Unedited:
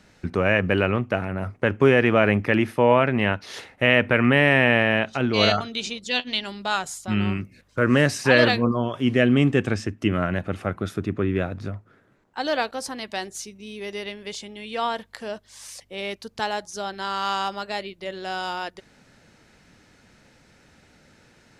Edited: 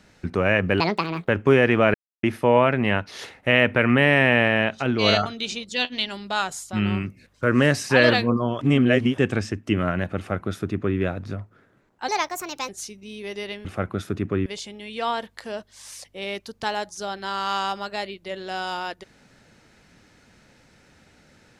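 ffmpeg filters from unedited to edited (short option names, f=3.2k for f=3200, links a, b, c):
-filter_complex "[0:a]asplit=11[a][b][c][d][e][f][g][h][i][j][k];[a]atrim=end=0.804[l];[b]atrim=start=0.8:end=1.63,asetpts=PTS-STARTPTS,asetrate=75852,aresample=44100[m];[c]atrim=start=1.626:end=2.29,asetpts=PTS-STARTPTS,afade=t=out:st=0.66:d=0.004:c=hsin[n];[d]atrim=start=2.29:end=2.58,asetpts=PTS-STARTPTS,volume=0[o];[e]atrim=start=2.58:end=8.962,asetpts=PTS-STARTPTS,afade=t=in:d=0.004:c=hsin[p];[f]atrim=start=8.958:end=9.532,asetpts=PTS-STARTPTS,areverse[q];[g]atrim=start=9.528:end=12.434[r];[h]atrim=start=12.43:end=13.26,asetpts=PTS-STARTPTS,asetrate=60417,aresample=44100[s];[i]atrim=start=13.256:end=14.222[t];[j]atrim=start=10.518:end=11.332[u];[k]atrim=start=14.218[v];[l][m]acrossfade=d=0.004:c1=hsin:c2=hsin[w];[n][o][p]concat=n=3:v=0:a=1[x];[w][x]acrossfade=d=0.004:c1=hsin:c2=hsin[y];[y][q]acrossfade=d=0.004:c1=hsin:c2=hsin[z];[z][r]acrossfade=d=0.004:c1=hsin:c2=hsin[aa];[aa][s]acrossfade=d=0.004:c1=hsin:c2=hsin[ab];[ab][t]acrossfade=d=0.004:c1=hsin:c2=hsin[ac];[ac][u]acrossfade=d=0.004:c1=hsin:c2=hsin[ad];[ad][v]acrossfade=d=0.004:c1=hsin:c2=hsin"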